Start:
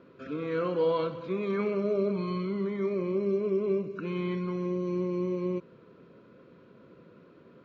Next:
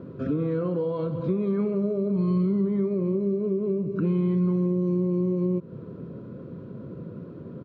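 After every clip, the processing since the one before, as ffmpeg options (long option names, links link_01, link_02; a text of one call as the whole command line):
ffmpeg -i in.wav -af "firequalizer=gain_entry='entry(580,0);entry(2300,-11);entry(3300,-8)':delay=0.05:min_phase=1,acompressor=threshold=-38dB:ratio=6,equalizer=frequency=110:width_type=o:width=2.6:gain=14.5,volume=8dB" out.wav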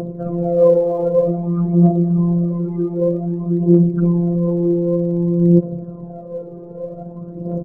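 ffmpeg -i in.wav -af "lowpass=frequency=680:width_type=q:width=4.9,afftfilt=real='hypot(re,im)*cos(PI*b)':imag='0':win_size=1024:overlap=0.75,aphaser=in_gain=1:out_gain=1:delay=2.6:decay=0.71:speed=0.53:type=triangular,volume=7.5dB" out.wav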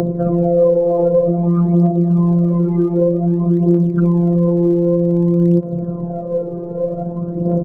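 ffmpeg -i in.wav -filter_complex "[0:a]acrossover=split=99|730[link_01][link_02][link_03];[link_01]acompressor=threshold=-45dB:ratio=4[link_04];[link_02]acompressor=threshold=-22dB:ratio=4[link_05];[link_03]acompressor=threshold=-39dB:ratio=4[link_06];[link_04][link_05][link_06]amix=inputs=3:normalize=0,volume=9dB" out.wav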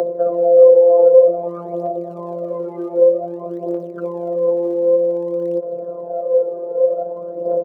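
ffmpeg -i in.wav -af "highpass=frequency=550:width_type=q:width=4.1,volume=-5.5dB" out.wav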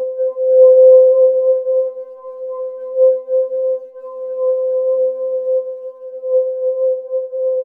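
ffmpeg -i in.wav -filter_complex "[0:a]agate=range=-25dB:threshold=-27dB:ratio=16:detection=peak,asplit=2[link_01][link_02];[link_02]aecho=0:1:320|512|627.2|696.3|737.8:0.631|0.398|0.251|0.158|0.1[link_03];[link_01][link_03]amix=inputs=2:normalize=0,afftfilt=real='re*3.46*eq(mod(b,12),0)':imag='im*3.46*eq(mod(b,12),0)':win_size=2048:overlap=0.75,volume=-7.5dB" out.wav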